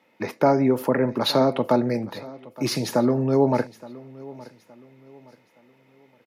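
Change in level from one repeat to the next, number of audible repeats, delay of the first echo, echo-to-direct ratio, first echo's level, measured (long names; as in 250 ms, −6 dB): −9.0 dB, 2, 869 ms, −19.5 dB, −20.0 dB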